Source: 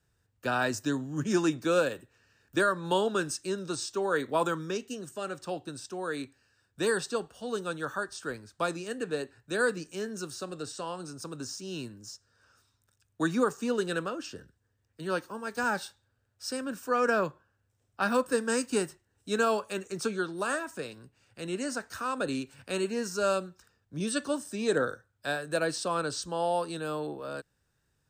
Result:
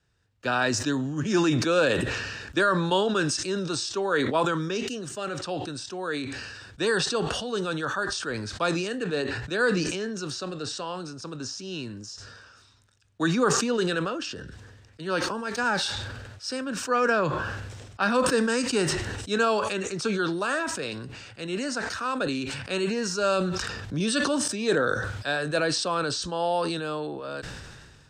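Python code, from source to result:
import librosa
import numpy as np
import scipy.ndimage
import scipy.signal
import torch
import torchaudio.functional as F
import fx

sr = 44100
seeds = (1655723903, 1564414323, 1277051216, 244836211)

y = fx.peak_eq(x, sr, hz=11000.0, db=-6.5, octaves=0.77, at=(9.16, 11.9))
y = fx.env_flatten(y, sr, amount_pct=70, at=(23.32, 24.48))
y = scipy.signal.sosfilt(scipy.signal.butter(2, 4200.0, 'lowpass', fs=sr, output='sos'), y)
y = fx.high_shelf(y, sr, hz=3200.0, db=10.0)
y = fx.sustainer(y, sr, db_per_s=32.0)
y = y * librosa.db_to_amplitude(2.0)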